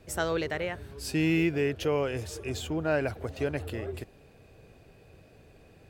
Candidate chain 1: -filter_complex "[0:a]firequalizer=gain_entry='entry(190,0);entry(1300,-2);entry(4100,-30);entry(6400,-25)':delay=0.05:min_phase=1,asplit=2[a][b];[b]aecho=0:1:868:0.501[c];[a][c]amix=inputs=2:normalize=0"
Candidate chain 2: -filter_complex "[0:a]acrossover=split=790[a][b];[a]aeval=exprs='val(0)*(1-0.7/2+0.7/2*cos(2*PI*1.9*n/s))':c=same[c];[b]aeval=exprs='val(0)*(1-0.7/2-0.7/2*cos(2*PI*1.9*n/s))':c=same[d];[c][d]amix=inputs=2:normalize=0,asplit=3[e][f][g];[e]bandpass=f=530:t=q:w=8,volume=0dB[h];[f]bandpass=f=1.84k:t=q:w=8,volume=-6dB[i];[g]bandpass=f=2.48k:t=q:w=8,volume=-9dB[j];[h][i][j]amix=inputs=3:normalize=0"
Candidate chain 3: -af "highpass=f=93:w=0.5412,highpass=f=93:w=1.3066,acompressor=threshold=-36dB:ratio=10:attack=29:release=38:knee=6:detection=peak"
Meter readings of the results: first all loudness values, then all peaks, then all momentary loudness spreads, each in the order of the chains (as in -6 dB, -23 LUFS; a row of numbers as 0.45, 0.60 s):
-31.0, -44.0, -36.5 LUFS; -16.5, -29.0, -19.5 dBFS; 13, 13, 6 LU